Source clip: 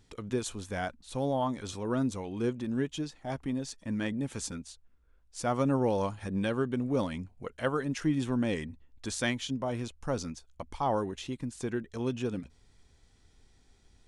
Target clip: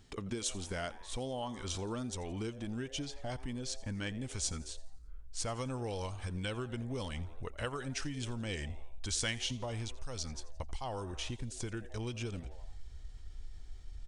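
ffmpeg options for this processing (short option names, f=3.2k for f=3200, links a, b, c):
-filter_complex "[0:a]asetrate=41625,aresample=44100,atempo=1.05946,asplit=5[a][b][c][d][e];[b]adelay=85,afreqshift=140,volume=-20dB[f];[c]adelay=170,afreqshift=280,volume=-25.8dB[g];[d]adelay=255,afreqshift=420,volume=-31.7dB[h];[e]adelay=340,afreqshift=560,volume=-37.5dB[i];[a][f][g][h][i]amix=inputs=5:normalize=0,asubboost=boost=8:cutoff=69,acrossover=split=2500[j][k];[j]acompressor=threshold=-39dB:ratio=6[l];[l][k]amix=inputs=2:normalize=0,volume=2.5dB"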